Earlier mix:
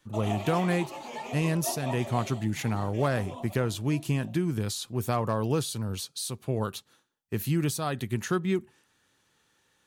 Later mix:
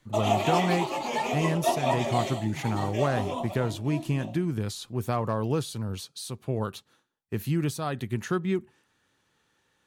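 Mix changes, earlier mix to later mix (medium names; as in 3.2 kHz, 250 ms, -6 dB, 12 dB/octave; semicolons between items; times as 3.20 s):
speech: add treble shelf 4.3 kHz -6.5 dB; background +9.5 dB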